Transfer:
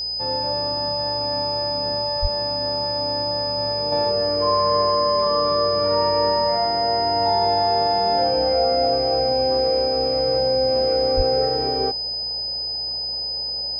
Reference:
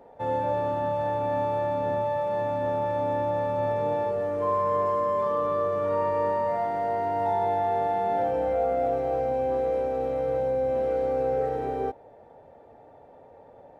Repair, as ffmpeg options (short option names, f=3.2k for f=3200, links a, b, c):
-filter_complex "[0:a]bandreject=f=60.1:t=h:w=4,bandreject=f=120.2:t=h:w=4,bandreject=f=180.3:t=h:w=4,bandreject=f=240.4:t=h:w=4,bandreject=f=5k:w=30,asplit=3[a][b][c];[a]afade=t=out:st=2.21:d=0.02[d];[b]highpass=f=140:w=0.5412,highpass=f=140:w=1.3066,afade=t=in:st=2.21:d=0.02,afade=t=out:st=2.33:d=0.02[e];[c]afade=t=in:st=2.33:d=0.02[f];[d][e][f]amix=inputs=3:normalize=0,asplit=3[g][h][i];[g]afade=t=out:st=11.16:d=0.02[j];[h]highpass=f=140:w=0.5412,highpass=f=140:w=1.3066,afade=t=in:st=11.16:d=0.02,afade=t=out:st=11.28:d=0.02[k];[i]afade=t=in:st=11.28:d=0.02[l];[j][k][l]amix=inputs=3:normalize=0,asetnsamples=n=441:p=0,asendcmd='3.92 volume volume -5.5dB',volume=0dB"